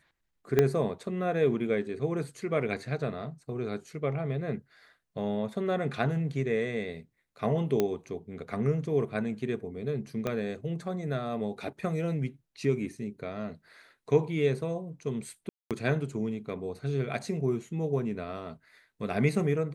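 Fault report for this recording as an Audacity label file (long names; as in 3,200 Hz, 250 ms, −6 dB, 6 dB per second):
0.590000	0.590000	click −10 dBFS
7.800000	7.800000	click −13 dBFS
10.270000	10.270000	click −17 dBFS
15.490000	15.710000	drop-out 217 ms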